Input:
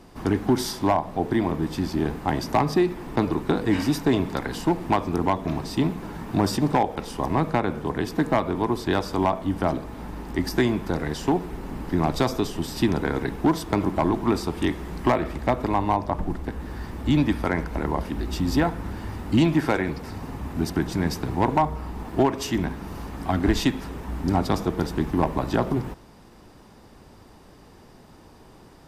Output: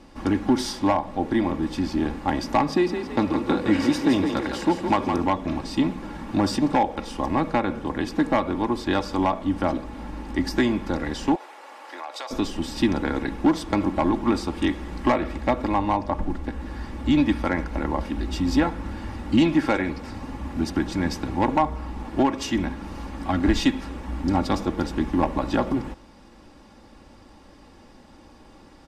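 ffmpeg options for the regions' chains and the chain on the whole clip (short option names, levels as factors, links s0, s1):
-filter_complex "[0:a]asettb=1/sr,asplit=3[s0][s1][s2];[s0]atrim=end=2.704[s3];[s1]atrim=start=2.7:end=5.24,asetpts=PTS-STARTPTS,afade=t=in:d=0.004:c=qsin,afade=t=out:st=2.536:d=0.004:c=qsin,highpass=51,asplit=7[s4][s5][s6][s7][s8][s9][s10];[s5]adelay=164,afreqshift=31,volume=0.473[s11];[s6]adelay=328,afreqshift=62,volume=0.221[s12];[s7]adelay=492,afreqshift=93,volume=0.105[s13];[s8]adelay=656,afreqshift=124,volume=0.049[s14];[s9]adelay=820,afreqshift=155,volume=0.0232[s15];[s10]adelay=984,afreqshift=186,volume=0.0108[s16];[s4][s11][s12][s13][s14][s15][s16]amix=inputs=7:normalize=0,atrim=end_sample=112014[s17];[s2]atrim=start=5.236[s18];[s3][s17]acrossfade=d=0.004:c1=hsin:c2=qsin[s19];[s19][s18]acrossfade=d=0.004:c1=qsin:c2=hsin,asettb=1/sr,asplit=3[s20][s21][s22];[s20]atrim=end=11.354[s23];[s21]atrim=start=11.35:end=12.31,asetpts=PTS-STARTPTS,afade=t=in:d=0.004:c=qsin,afade=t=out:st=0.956:d=0.004:c=qsin,highpass=f=570:w=0.5412,highpass=f=570:w=1.3066,acompressor=threshold=0.0251:ratio=3:attack=3.2:release=140:knee=1:detection=peak[s24];[s22]atrim=start=12.306[s25];[s23][s24]acrossfade=d=0.004:c1=hsin:c2=qsin[s26];[s26][s25]acrossfade=d=0.004:c1=qsin:c2=hsin,lowpass=8500,equalizer=f=2600:w=1.5:g=2,aecho=1:1:3.6:0.52,volume=0.891"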